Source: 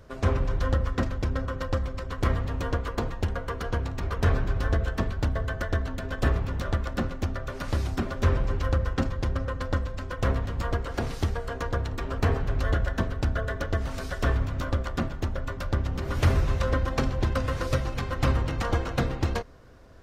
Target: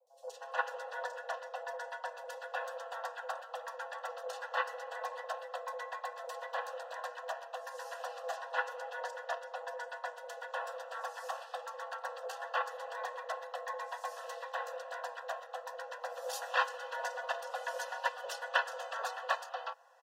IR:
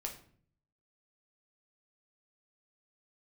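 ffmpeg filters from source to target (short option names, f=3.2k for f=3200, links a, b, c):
-filter_complex "[0:a]highpass=f=96:w=0.5412,highpass=f=96:w=1.3066,agate=range=-16dB:threshold=-22dB:ratio=16:detection=peak,aecho=1:1:3.1:0.51,acrossover=split=490|2000[a][b][c];[a]acompressor=threshold=-43dB:ratio=6[d];[d][b][c]amix=inputs=3:normalize=0,afreqshift=420,asuperstop=centerf=2200:order=12:qfactor=4.4,acrossover=split=490|4300[e][f][g];[g]adelay=70[h];[f]adelay=310[i];[e][i][h]amix=inputs=3:normalize=0,volume=8dB"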